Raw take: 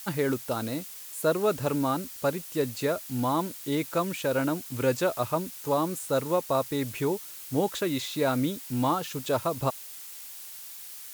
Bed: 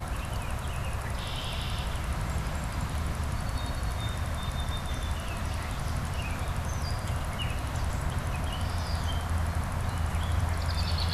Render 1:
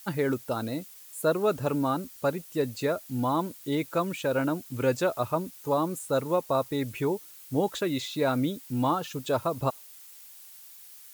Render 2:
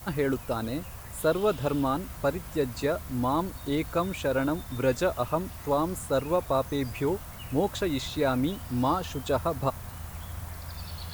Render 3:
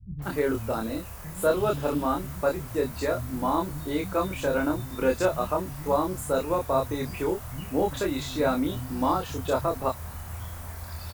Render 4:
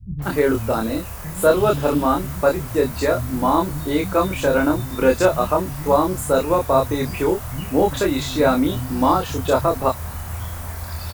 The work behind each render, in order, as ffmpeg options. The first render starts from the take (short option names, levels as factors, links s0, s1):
-af "afftdn=nr=8:nf=-43"
-filter_complex "[1:a]volume=0.299[s0];[0:a][s0]amix=inputs=2:normalize=0"
-filter_complex "[0:a]asplit=2[s0][s1];[s1]adelay=27,volume=0.708[s2];[s0][s2]amix=inputs=2:normalize=0,acrossover=split=170|3500[s3][s4][s5];[s4]adelay=190[s6];[s5]adelay=220[s7];[s3][s6][s7]amix=inputs=3:normalize=0"
-af "volume=2.51"